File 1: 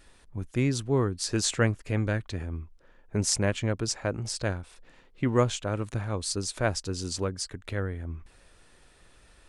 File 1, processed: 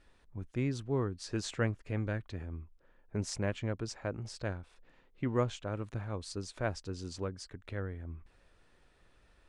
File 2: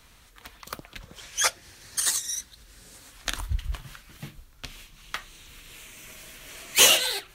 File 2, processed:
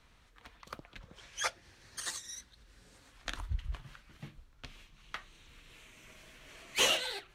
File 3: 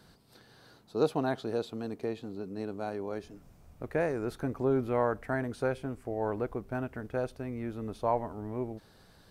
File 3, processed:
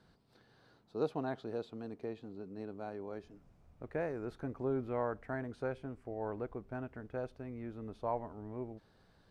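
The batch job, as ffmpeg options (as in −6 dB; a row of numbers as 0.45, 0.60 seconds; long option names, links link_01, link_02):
-af "aemphasis=mode=reproduction:type=50fm,volume=-7.5dB"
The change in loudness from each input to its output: −8.0, −12.5, −7.0 LU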